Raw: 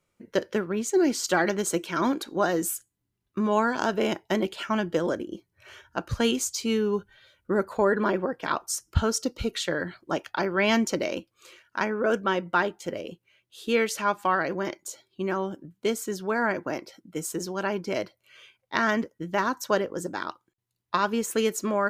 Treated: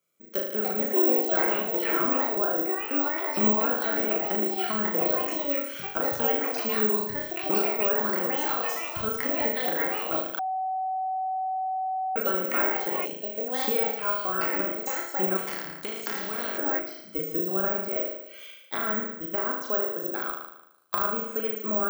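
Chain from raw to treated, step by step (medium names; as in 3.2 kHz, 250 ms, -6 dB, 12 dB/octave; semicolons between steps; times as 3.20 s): recorder AGC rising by 12 dB/s; low-pass that closes with the level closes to 1.6 kHz, closed at -22 dBFS; high-pass 300 Hz 6 dB/octave; treble shelf 4.4 kHz +6 dB; comb of notches 910 Hz; flutter echo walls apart 6.4 m, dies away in 0.87 s; ever faster or slower copies 382 ms, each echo +5 st, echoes 2; careless resampling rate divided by 2×, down none, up zero stuff; 10.39–12.16 s: bleep 755 Hz -19.5 dBFS; 15.37–16.58 s: spectrum-flattening compressor 2:1; trim -6.5 dB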